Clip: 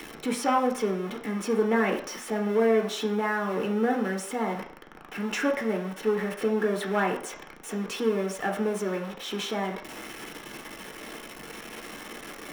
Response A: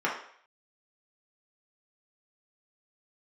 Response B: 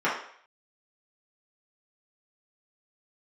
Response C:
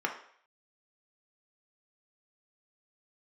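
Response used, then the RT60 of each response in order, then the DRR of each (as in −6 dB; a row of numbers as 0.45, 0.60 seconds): C; 0.60, 0.60, 0.60 seconds; −4.5, −9.0, 1.5 decibels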